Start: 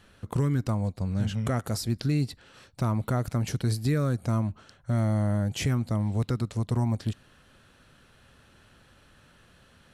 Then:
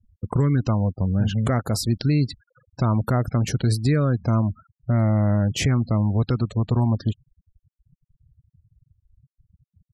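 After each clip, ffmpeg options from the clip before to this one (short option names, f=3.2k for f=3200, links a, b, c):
-filter_complex "[0:a]afftfilt=real='re*gte(hypot(re,im),0.01)':imag='im*gte(hypot(re,im),0.01)':win_size=1024:overlap=0.75,asplit=2[a][b];[b]alimiter=level_in=1.5dB:limit=-24dB:level=0:latency=1:release=374,volume=-1.5dB,volume=-1dB[c];[a][c]amix=inputs=2:normalize=0,volume=3dB"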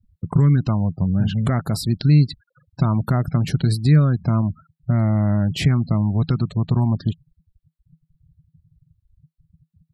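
-af "equalizer=f=160:t=o:w=0.33:g=12,equalizer=f=500:t=o:w=0.33:g=-7,equalizer=f=4k:t=o:w=0.33:g=5,equalizer=f=6.3k:t=o:w=0.33:g=-11"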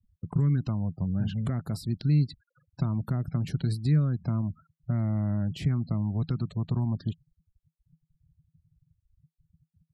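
-filter_complex "[0:a]acrossover=split=390[a][b];[b]acompressor=threshold=-33dB:ratio=4[c];[a][c]amix=inputs=2:normalize=0,volume=-9dB"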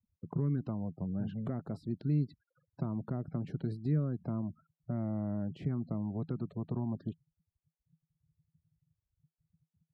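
-af "bandpass=f=440:t=q:w=0.88:csg=0"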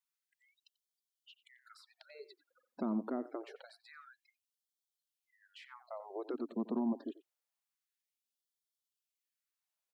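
-filter_complex "[0:a]asplit=2[a][b];[b]adelay=90,highpass=300,lowpass=3.4k,asoftclip=type=hard:threshold=-29.5dB,volume=-15dB[c];[a][c]amix=inputs=2:normalize=0,afftfilt=real='re*gte(b*sr/1024,200*pow(3100/200,0.5+0.5*sin(2*PI*0.26*pts/sr)))':imag='im*gte(b*sr/1024,200*pow(3100/200,0.5+0.5*sin(2*PI*0.26*pts/sr)))':win_size=1024:overlap=0.75,volume=4dB"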